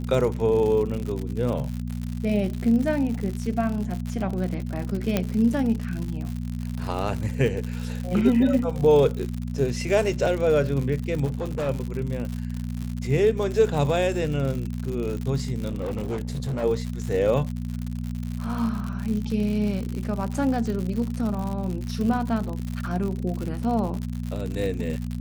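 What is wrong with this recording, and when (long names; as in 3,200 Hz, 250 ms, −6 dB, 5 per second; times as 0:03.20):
surface crackle 110 per second −29 dBFS
mains hum 60 Hz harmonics 4 −30 dBFS
0:05.17: click −8 dBFS
0:11.25–0:11.69: clipping −23.5 dBFS
0:15.70–0:16.64: clipping −24.5 dBFS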